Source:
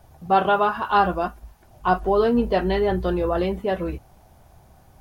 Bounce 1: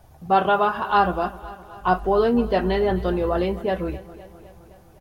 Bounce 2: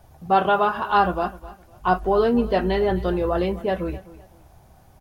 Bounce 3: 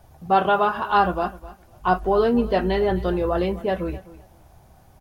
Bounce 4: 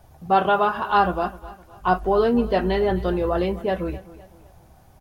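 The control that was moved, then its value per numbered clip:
feedback echo, feedback: 62, 27, 17, 40%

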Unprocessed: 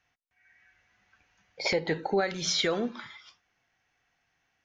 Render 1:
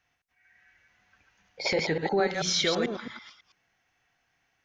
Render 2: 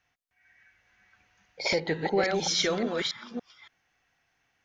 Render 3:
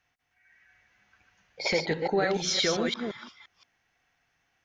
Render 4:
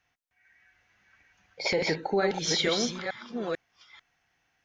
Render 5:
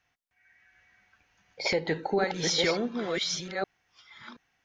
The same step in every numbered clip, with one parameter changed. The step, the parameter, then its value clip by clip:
reverse delay, time: 0.11, 0.283, 0.173, 0.444, 0.728 s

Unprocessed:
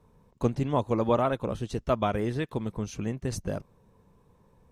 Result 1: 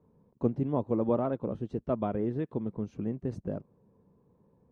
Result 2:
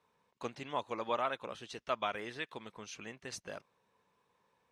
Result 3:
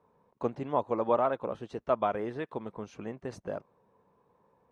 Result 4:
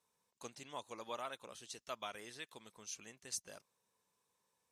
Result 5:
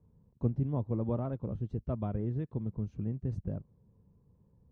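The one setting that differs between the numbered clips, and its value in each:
band-pass, frequency: 270, 2700, 820, 7900, 100 Hz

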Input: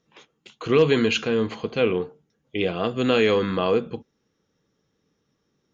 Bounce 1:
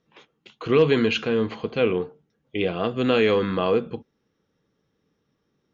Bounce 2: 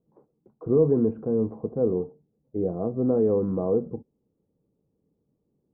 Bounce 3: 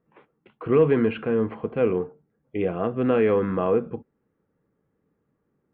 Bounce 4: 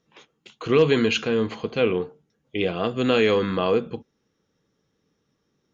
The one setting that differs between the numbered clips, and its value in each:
Bessel low-pass, frequency: 4300, 520, 1400, 11000 Hz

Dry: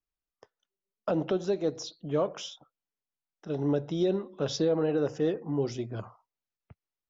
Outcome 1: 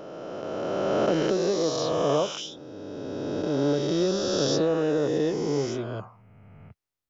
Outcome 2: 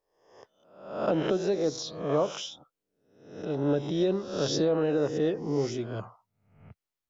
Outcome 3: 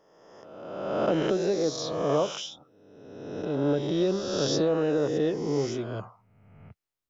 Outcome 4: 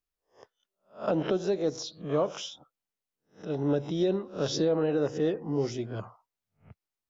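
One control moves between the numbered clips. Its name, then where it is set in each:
spectral swells, rising 60 dB in: 3.18, 0.67, 1.46, 0.3 s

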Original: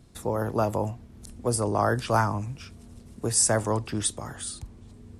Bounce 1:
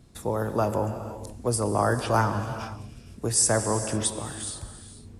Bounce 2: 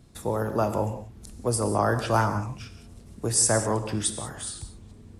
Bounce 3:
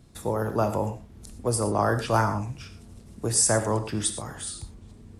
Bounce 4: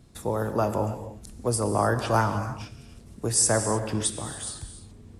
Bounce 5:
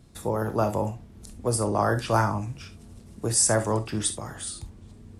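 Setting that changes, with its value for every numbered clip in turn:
non-linear reverb, gate: 520, 210, 140, 330, 90 ms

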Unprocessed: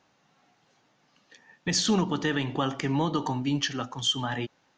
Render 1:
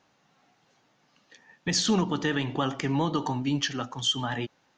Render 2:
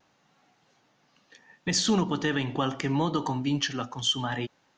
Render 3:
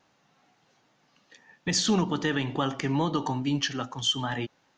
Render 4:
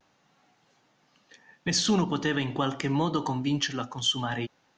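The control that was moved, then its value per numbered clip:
vibrato, rate: 10, 0.7, 2.4, 0.4 Hz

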